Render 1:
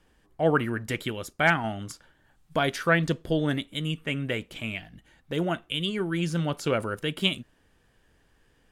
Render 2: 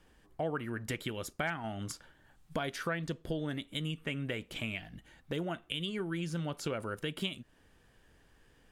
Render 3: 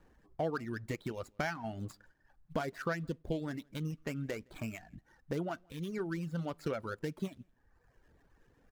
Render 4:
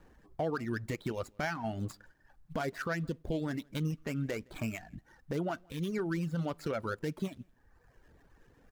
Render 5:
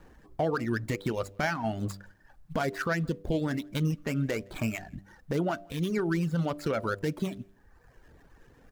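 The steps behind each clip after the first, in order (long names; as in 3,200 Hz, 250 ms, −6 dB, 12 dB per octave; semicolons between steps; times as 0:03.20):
downward compressor 4 to 1, threshold −34 dBFS, peak gain reduction 15 dB
running median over 15 samples; single-tap delay 166 ms −20.5 dB; reverb reduction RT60 1 s; level +1 dB
brickwall limiter −29.5 dBFS, peak gain reduction 8 dB; level +4.5 dB
hum removal 98.24 Hz, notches 7; level +5.5 dB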